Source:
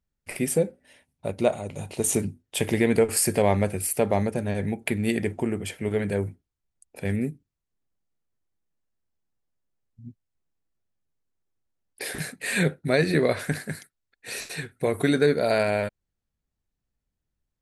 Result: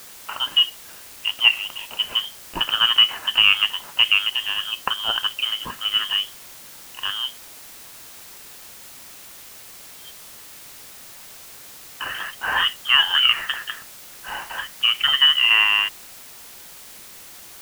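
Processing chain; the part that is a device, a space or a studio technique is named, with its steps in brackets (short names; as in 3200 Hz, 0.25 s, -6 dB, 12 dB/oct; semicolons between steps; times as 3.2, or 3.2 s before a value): scrambled radio voice (BPF 400–3000 Hz; inverted band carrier 3400 Hz; white noise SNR 18 dB); gain +7.5 dB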